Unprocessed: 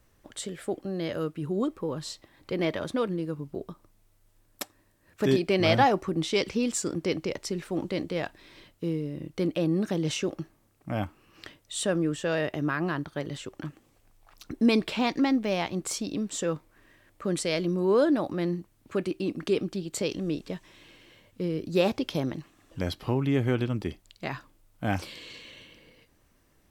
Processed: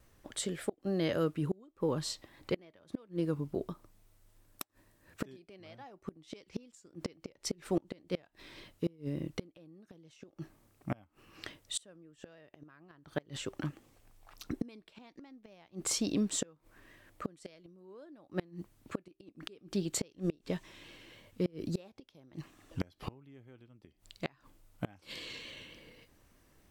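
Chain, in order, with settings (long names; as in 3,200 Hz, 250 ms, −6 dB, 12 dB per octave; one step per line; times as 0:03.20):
pitch vibrato 3.5 Hz 39 cents
gate with flip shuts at −21 dBFS, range −30 dB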